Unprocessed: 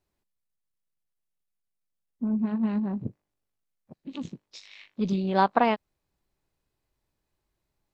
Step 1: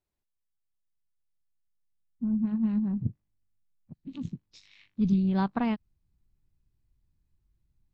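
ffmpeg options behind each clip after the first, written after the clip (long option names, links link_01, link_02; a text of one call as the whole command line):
ffmpeg -i in.wav -af "asubboost=boost=11:cutoff=170,volume=-8.5dB" out.wav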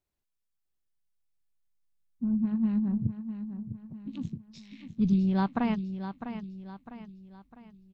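ffmpeg -i in.wav -af "aecho=1:1:653|1306|1959|2612|3265:0.316|0.136|0.0585|0.0251|0.0108" out.wav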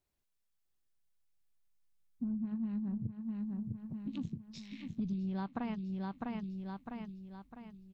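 ffmpeg -i in.wav -af "acompressor=threshold=-36dB:ratio=6,volume=1dB" out.wav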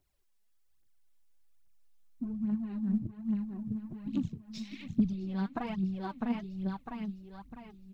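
ffmpeg -i in.wav -af "aphaser=in_gain=1:out_gain=1:delay=4.9:decay=0.65:speed=1.2:type=triangular,volume=2.5dB" out.wav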